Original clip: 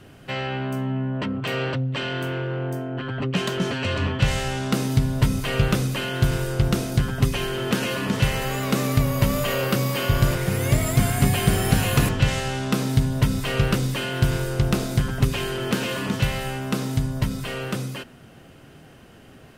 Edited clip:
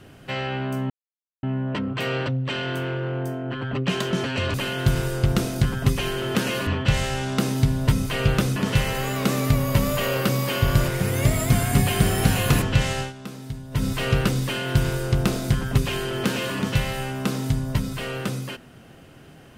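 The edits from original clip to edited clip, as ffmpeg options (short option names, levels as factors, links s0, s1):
-filter_complex "[0:a]asplit=7[s0][s1][s2][s3][s4][s5][s6];[s0]atrim=end=0.9,asetpts=PTS-STARTPTS,afade=t=out:st=0.896:d=0.004:c=hsin,apad=pad_dur=0.53[s7];[s1]atrim=start=0.9:end=4.012,asetpts=PTS-STARTPTS,afade=t=in:d=0.004:c=hsin[s8];[s2]atrim=start=5.898:end=8.032[s9];[s3]atrim=start=4.008:end=5.902[s10];[s4]atrim=start=8.028:end=12.6,asetpts=PTS-STARTPTS,afade=t=out:st=4.442:d=0.13:silence=0.211349[s11];[s5]atrim=start=12.6:end=13.18,asetpts=PTS-STARTPTS,volume=0.211[s12];[s6]atrim=start=13.18,asetpts=PTS-STARTPTS,afade=t=in:d=0.13:silence=0.211349[s13];[s7][s8]concat=n=2:v=0:a=1[s14];[s14][s9]acrossfade=d=0.004:c1=hsin:c2=hsin[s15];[s15][s10]acrossfade=d=0.004:c1=hsin:c2=hsin[s16];[s11][s12][s13]concat=n=3:v=0:a=1[s17];[s16][s17]acrossfade=d=0.004:c1=hsin:c2=hsin"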